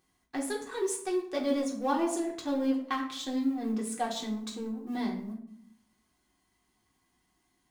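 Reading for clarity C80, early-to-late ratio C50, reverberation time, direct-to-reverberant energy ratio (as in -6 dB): 11.5 dB, 8.0 dB, 0.70 s, -3.0 dB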